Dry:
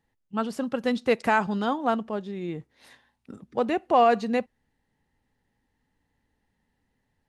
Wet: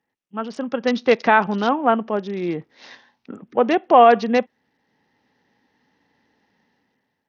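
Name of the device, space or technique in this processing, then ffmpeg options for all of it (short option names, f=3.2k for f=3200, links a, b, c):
Bluetooth headset: -af "highpass=210,dynaudnorm=f=200:g=7:m=12.5dB,aresample=16000,aresample=44100" -ar 48000 -c:a sbc -b:a 64k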